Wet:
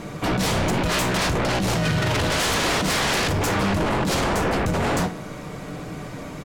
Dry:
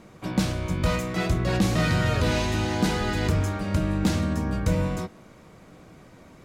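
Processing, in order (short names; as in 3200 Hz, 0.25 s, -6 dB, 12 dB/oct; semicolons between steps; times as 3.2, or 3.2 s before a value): comb 6.8 ms, depth 34%; negative-ratio compressor -25 dBFS, ratio -0.5; sine folder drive 16 dB, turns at -12 dBFS; reverb, pre-delay 3 ms, DRR 10.5 dB; gain -7 dB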